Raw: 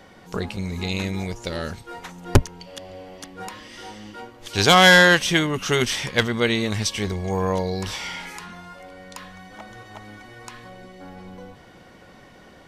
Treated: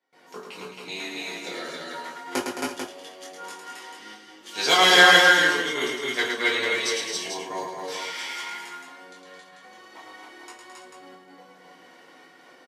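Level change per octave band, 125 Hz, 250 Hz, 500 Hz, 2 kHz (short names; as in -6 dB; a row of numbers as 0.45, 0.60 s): -21.0, -8.5, -4.0, 0.0 dB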